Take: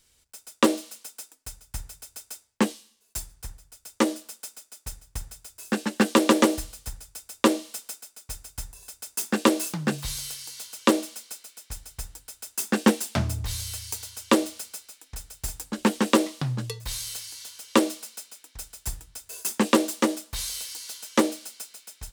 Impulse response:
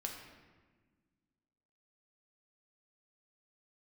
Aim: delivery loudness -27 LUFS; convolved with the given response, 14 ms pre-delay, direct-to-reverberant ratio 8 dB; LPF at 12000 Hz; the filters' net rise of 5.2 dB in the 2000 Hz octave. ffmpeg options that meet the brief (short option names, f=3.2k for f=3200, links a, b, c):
-filter_complex "[0:a]lowpass=12k,equalizer=f=2k:t=o:g=6.5,asplit=2[a][b];[1:a]atrim=start_sample=2205,adelay=14[c];[b][c]afir=irnorm=-1:irlink=0,volume=-7.5dB[d];[a][d]amix=inputs=2:normalize=0,volume=-1.5dB"